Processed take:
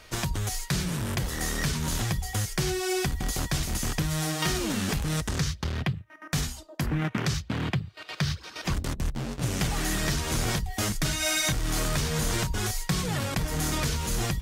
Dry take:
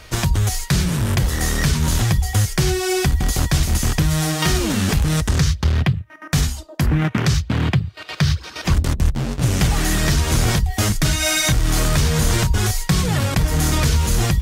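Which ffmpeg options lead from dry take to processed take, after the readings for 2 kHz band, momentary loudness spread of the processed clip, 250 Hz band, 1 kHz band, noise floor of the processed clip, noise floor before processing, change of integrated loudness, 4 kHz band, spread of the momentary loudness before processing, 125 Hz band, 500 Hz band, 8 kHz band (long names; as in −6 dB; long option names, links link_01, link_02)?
−7.5 dB, 4 LU, −9.0 dB, −7.5 dB, −48 dBFS, −39 dBFS, −9.5 dB, −7.5 dB, 3 LU, −11.5 dB, −8.0 dB, −7.5 dB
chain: -af "equalizer=frequency=71:width=0.87:gain=-7.5,volume=-7.5dB"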